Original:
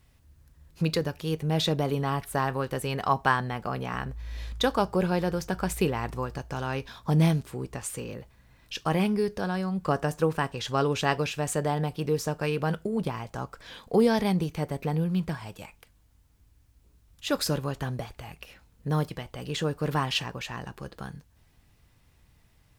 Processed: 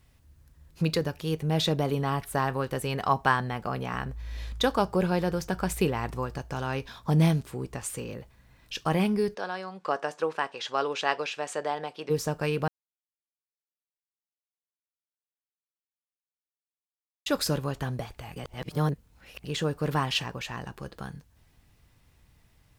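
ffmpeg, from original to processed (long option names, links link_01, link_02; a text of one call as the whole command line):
ffmpeg -i in.wav -filter_complex "[0:a]asplit=3[link_01][link_02][link_03];[link_01]afade=type=out:start_time=9.34:duration=0.02[link_04];[link_02]highpass=470,lowpass=5700,afade=type=in:start_time=9.34:duration=0.02,afade=type=out:start_time=12.09:duration=0.02[link_05];[link_03]afade=type=in:start_time=12.09:duration=0.02[link_06];[link_04][link_05][link_06]amix=inputs=3:normalize=0,asplit=5[link_07][link_08][link_09][link_10][link_11];[link_07]atrim=end=12.68,asetpts=PTS-STARTPTS,afade=type=out:start_time=12.676:duration=0.004:curve=hsin[link_12];[link_08]atrim=start=12.68:end=17.26,asetpts=PTS-STARTPTS,volume=0[link_13];[link_09]atrim=start=17.26:end=18.362,asetpts=PTS-STARTPTS,afade=type=in:duration=0.004:curve=hsin[link_14];[link_10]atrim=start=18.358:end=19.442,asetpts=PTS-STARTPTS,areverse[link_15];[link_11]atrim=start=19.438[link_16];[link_12][link_13][link_14]concat=n=3:v=0:a=1[link_17];[link_17][link_15]acrossfade=duration=0.004:curve1=hsin:curve2=hsin[link_18];[link_18][link_16]acrossfade=duration=0.004:curve1=hsin:curve2=hsin" out.wav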